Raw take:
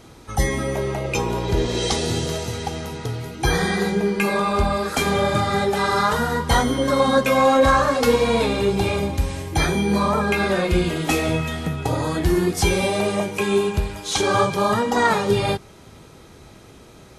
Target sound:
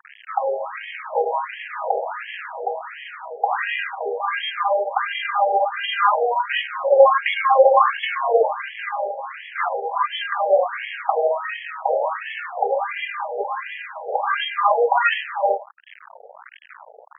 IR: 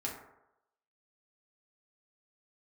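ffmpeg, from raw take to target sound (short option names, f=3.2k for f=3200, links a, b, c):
-filter_complex "[0:a]acrossover=split=340|3000[a][b][c];[a]acompressor=threshold=-44dB:ratio=2[d];[d][b][c]amix=inputs=3:normalize=0,tiltshelf=f=920:g=4.5,acrossover=split=390|4600[e][f][g];[e]acompressor=threshold=-38dB:ratio=16[h];[h][f][g]amix=inputs=3:normalize=0,bandreject=f=60:t=h:w=6,bandreject=f=120:t=h:w=6,bandreject=f=180:t=h:w=6,bandreject=f=240:t=h:w=6,bandreject=f=300:t=h:w=6,bandreject=f=360:t=h:w=6,bandreject=f=420:t=h:w=6,asplit=2[i][j];[1:a]atrim=start_sample=2205,asetrate=57330,aresample=44100[k];[j][k]afir=irnorm=-1:irlink=0,volume=-8dB[l];[i][l]amix=inputs=2:normalize=0,acrusher=bits=5:mix=0:aa=0.000001,adynamicequalizer=threshold=0.0112:dfrequency=150:dqfactor=0.82:tfrequency=150:tqfactor=0.82:attack=5:release=100:ratio=0.375:range=3:mode=boostabove:tftype=bell,acrusher=samples=10:mix=1:aa=0.000001,aresample=22050,aresample=44100,afftfilt=real='re*between(b*sr/1024,580*pow(2400/580,0.5+0.5*sin(2*PI*1.4*pts/sr))/1.41,580*pow(2400/580,0.5+0.5*sin(2*PI*1.4*pts/sr))*1.41)':imag='im*between(b*sr/1024,580*pow(2400/580,0.5+0.5*sin(2*PI*1.4*pts/sr))/1.41,580*pow(2400/580,0.5+0.5*sin(2*PI*1.4*pts/sr))*1.41)':win_size=1024:overlap=0.75,volume=6dB"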